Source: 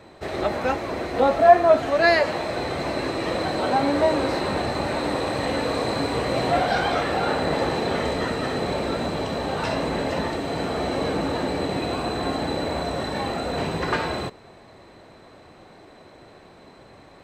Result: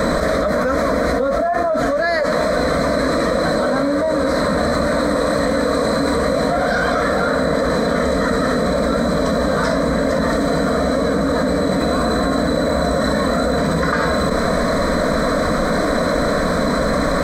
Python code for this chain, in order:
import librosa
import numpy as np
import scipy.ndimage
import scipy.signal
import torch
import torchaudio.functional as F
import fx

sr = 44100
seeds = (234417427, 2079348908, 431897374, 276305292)

y = fx.low_shelf(x, sr, hz=110.0, db=6.5)
y = fx.fixed_phaser(y, sr, hz=550.0, stages=8)
y = fx.env_flatten(y, sr, amount_pct=100)
y = F.gain(torch.from_numpy(y), -6.0).numpy()